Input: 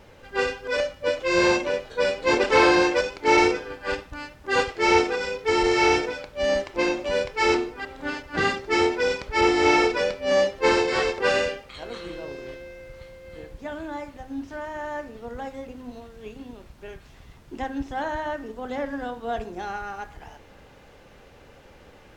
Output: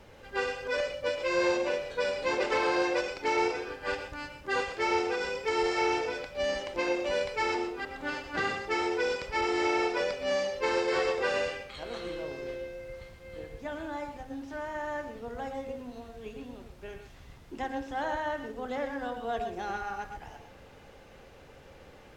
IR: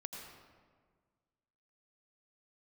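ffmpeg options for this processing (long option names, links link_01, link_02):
-filter_complex "[0:a]acrossover=split=440|1800[link_01][link_02][link_03];[link_01]acompressor=threshold=-37dB:ratio=4[link_04];[link_02]acompressor=threshold=-26dB:ratio=4[link_05];[link_03]acompressor=threshold=-34dB:ratio=4[link_06];[link_04][link_05][link_06]amix=inputs=3:normalize=0[link_07];[1:a]atrim=start_sample=2205,atrim=end_sample=4410,asetrate=32193,aresample=44100[link_08];[link_07][link_08]afir=irnorm=-1:irlink=0"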